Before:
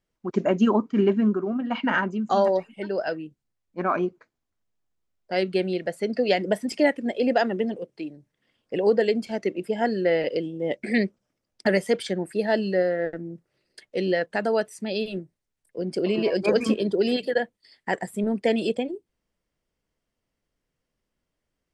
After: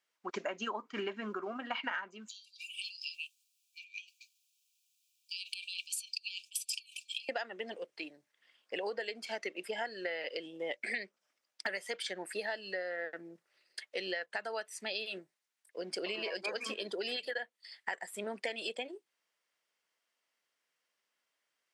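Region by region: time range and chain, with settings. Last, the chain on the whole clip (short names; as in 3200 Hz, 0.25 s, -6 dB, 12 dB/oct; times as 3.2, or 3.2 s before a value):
2.28–7.29 high shelf 4200 Hz +10 dB + negative-ratio compressor -32 dBFS + brick-wall FIR high-pass 2300 Hz
whole clip: Bessel high-pass 1700 Hz, order 2; tilt -2 dB/oct; compressor 12:1, threshold -42 dBFS; gain +8 dB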